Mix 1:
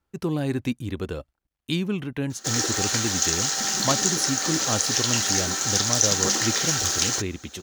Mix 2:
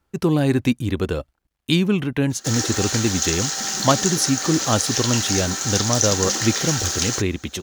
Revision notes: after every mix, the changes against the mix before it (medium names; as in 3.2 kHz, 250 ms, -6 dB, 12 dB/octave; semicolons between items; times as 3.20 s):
speech +7.5 dB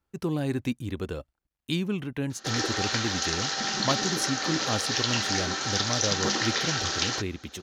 speech -10.0 dB; background: add low-pass 4.9 kHz 24 dB/octave